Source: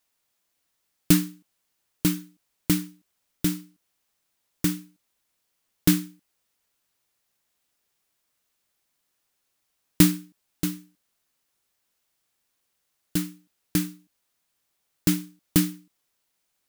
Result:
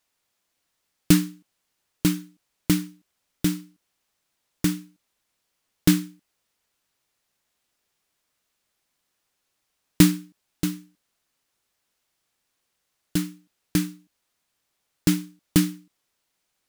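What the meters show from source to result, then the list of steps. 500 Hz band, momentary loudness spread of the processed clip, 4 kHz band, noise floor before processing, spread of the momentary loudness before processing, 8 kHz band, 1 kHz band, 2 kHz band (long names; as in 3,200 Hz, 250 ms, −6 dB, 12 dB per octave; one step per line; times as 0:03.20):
+2.0 dB, 17 LU, +1.5 dB, −76 dBFS, 17 LU, −0.5 dB, +2.0 dB, +2.0 dB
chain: high-shelf EQ 11,000 Hz −7.5 dB
level +2 dB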